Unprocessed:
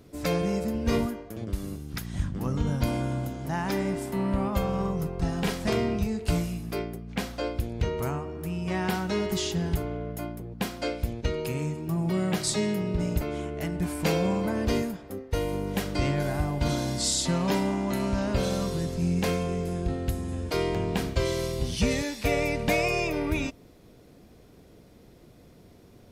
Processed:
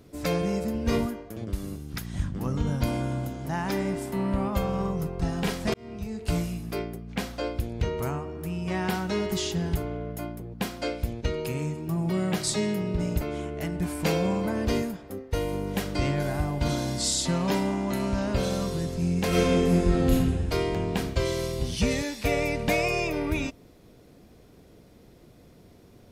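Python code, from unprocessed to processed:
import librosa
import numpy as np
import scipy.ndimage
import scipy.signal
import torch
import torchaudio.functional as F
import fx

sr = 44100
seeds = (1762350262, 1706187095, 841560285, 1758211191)

y = fx.reverb_throw(x, sr, start_s=19.28, length_s=0.85, rt60_s=1.5, drr_db=-9.0)
y = fx.edit(y, sr, fx.fade_in_span(start_s=5.74, length_s=0.66), tone=tone)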